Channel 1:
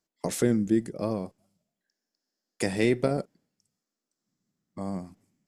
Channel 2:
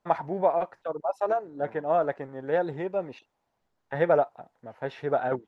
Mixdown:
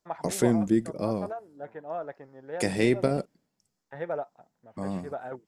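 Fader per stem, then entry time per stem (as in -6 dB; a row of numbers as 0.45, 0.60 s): +0.5, -10.5 dB; 0.00, 0.00 s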